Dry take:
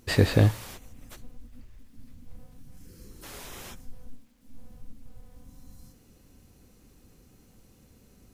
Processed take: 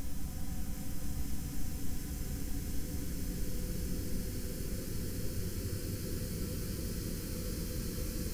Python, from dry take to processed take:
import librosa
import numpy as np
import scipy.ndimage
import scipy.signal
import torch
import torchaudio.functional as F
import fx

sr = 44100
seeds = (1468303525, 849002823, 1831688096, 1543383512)

y = fx.paulstretch(x, sr, seeds[0], factor=37.0, window_s=0.25, from_s=2.77)
y = fx.echo_split(y, sr, split_hz=1600.0, low_ms=279, high_ms=733, feedback_pct=52, wet_db=-5.5)
y = y * librosa.db_to_amplitude(10.5)